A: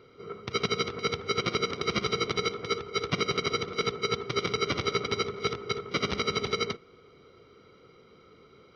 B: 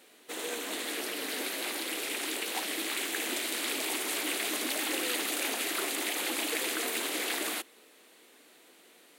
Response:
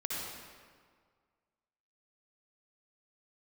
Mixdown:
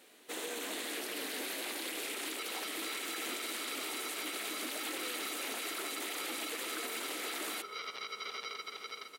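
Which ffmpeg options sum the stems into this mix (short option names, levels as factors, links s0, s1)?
-filter_complex "[0:a]highpass=790,acompressor=threshold=0.0251:ratio=6,adelay=1850,volume=0.708,asplit=2[s0][s1];[s1]volume=0.596[s2];[1:a]volume=0.794[s3];[s2]aecho=0:1:464|928|1392|1856|2320|2784:1|0.4|0.16|0.064|0.0256|0.0102[s4];[s0][s3][s4]amix=inputs=3:normalize=0,alimiter=level_in=1.88:limit=0.0631:level=0:latency=1:release=42,volume=0.531"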